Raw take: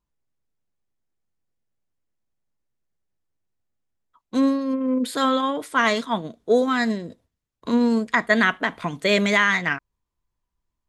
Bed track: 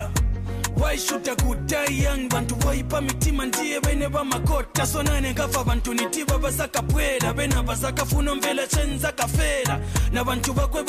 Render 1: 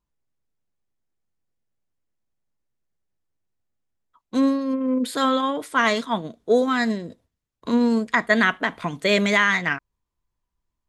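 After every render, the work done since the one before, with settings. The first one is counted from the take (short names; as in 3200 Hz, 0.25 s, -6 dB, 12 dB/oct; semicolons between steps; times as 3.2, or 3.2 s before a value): nothing audible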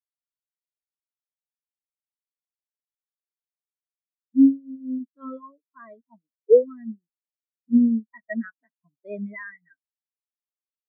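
spectral expander 4:1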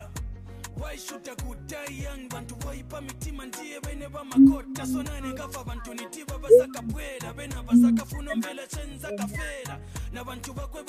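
add bed track -13.5 dB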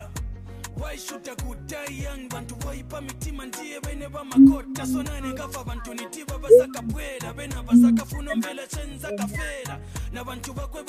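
gain +3 dB; limiter -3 dBFS, peak gain reduction 1 dB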